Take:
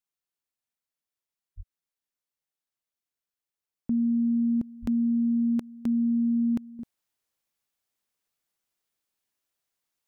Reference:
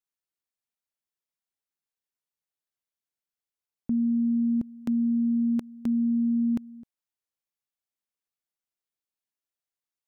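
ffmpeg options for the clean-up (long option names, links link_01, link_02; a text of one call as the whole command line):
ffmpeg -i in.wav -filter_complex "[0:a]asplit=3[link_01][link_02][link_03];[link_01]afade=type=out:start_time=1.56:duration=0.02[link_04];[link_02]highpass=frequency=140:width=0.5412,highpass=frequency=140:width=1.3066,afade=type=in:start_time=1.56:duration=0.02,afade=type=out:start_time=1.68:duration=0.02[link_05];[link_03]afade=type=in:start_time=1.68:duration=0.02[link_06];[link_04][link_05][link_06]amix=inputs=3:normalize=0,asplit=3[link_07][link_08][link_09];[link_07]afade=type=out:start_time=4.81:duration=0.02[link_10];[link_08]highpass=frequency=140:width=0.5412,highpass=frequency=140:width=1.3066,afade=type=in:start_time=4.81:duration=0.02,afade=type=out:start_time=4.93:duration=0.02[link_11];[link_09]afade=type=in:start_time=4.93:duration=0.02[link_12];[link_10][link_11][link_12]amix=inputs=3:normalize=0,asetnsamples=nb_out_samples=441:pad=0,asendcmd='6.79 volume volume -8.5dB',volume=0dB" out.wav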